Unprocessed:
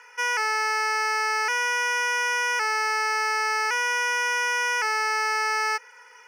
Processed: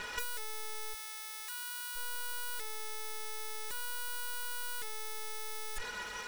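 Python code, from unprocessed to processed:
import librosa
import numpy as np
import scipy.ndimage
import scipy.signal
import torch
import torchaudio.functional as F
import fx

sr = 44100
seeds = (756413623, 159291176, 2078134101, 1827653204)

y = fx.lower_of_two(x, sr, delay_ms=4.8)
y = 10.0 ** (-32.5 / 20.0) * (np.abs((y / 10.0 ** (-32.5 / 20.0) + 3.0) % 4.0 - 2.0) - 1.0)
y = fx.over_compress(y, sr, threshold_db=-40.0, ratio=-0.5)
y = fx.highpass(y, sr, hz=1100.0, slope=12, at=(0.93, 1.95), fade=0.02)
y = y * 10.0 ** (4.0 / 20.0)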